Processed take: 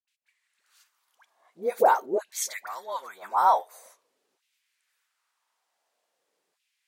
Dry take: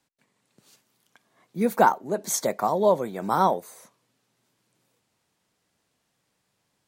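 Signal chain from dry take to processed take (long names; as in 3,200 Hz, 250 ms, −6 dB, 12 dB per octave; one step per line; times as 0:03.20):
auto-filter high-pass saw down 0.46 Hz 360–2,700 Hz
all-pass dispersion highs, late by 80 ms, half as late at 770 Hz
level −4.5 dB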